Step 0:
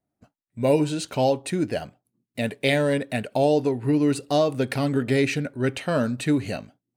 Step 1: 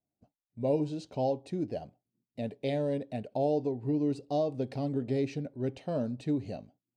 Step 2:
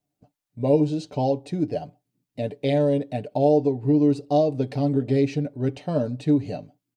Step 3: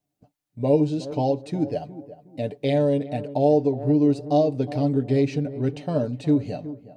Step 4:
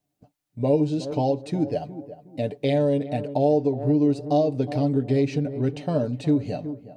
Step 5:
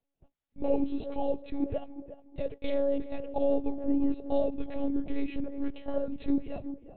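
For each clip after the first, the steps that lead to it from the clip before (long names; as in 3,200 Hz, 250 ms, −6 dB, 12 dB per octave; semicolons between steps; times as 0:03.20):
drawn EQ curve 770 Hz 0 dB, 1,400 Hz −16 dB, 5,200 Hz −6 dB, 11,000 Hz −22 dB; level −8.5 dB
comb filter 6.8 ms, depth 51%; level +7 dB
tape delay 365 ms, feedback 37%, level −13 dB, low-pass 1,000 Hz
downward compressor 1.5 to 1, threshold −24 dBFS, peak gain reduction 4 dB; level +2 dB
one-pitch LPC vocoder at 8 kHz 280 Hz; level −5.5 dB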